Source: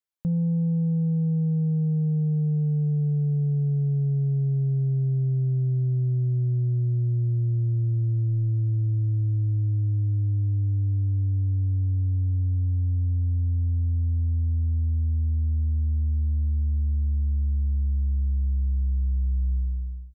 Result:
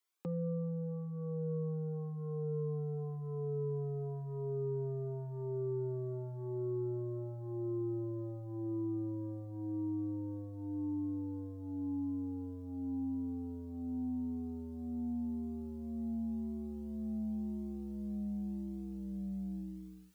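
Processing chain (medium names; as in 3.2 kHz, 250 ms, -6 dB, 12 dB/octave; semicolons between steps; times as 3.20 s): high-pass 270 Hz 24 dB/octave; gain riding; saturation -39 dBFS, distortion -25 dB; Shepard-style flanger rising 0.91 Hz; trim +13 dB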